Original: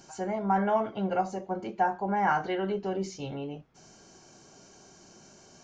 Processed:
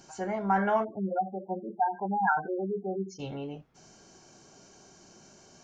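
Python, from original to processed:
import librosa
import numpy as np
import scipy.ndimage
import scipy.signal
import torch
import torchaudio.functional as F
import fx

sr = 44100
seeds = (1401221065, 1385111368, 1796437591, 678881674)

y = fx.spec_gate(x, sr, threshold_db=-10, keep='strong', at=(0.83, 3.18), fade=0.02)
y = fx.dynamic_eq(y, sr, hz=1600.0, q=1.7, threshold_db=-46.0, ratio=4.0, max_db=6)
y = y * 10.0 ** (-1.0 / 20.0)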